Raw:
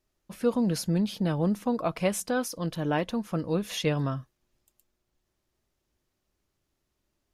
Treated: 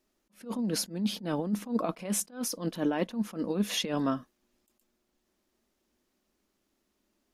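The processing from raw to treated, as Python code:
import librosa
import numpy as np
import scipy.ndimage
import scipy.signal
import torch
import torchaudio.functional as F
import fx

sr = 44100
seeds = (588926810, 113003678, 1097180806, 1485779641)

y = fx.over_compress(x, sr, threshold_db=-28.0, ratio=-0.5)
y = fx.low_shelf_res(y, sr, hz=170.0, db=-7.5, q=3.0)
y = fx.attack_slew(y, sr, db_per_s=190.0)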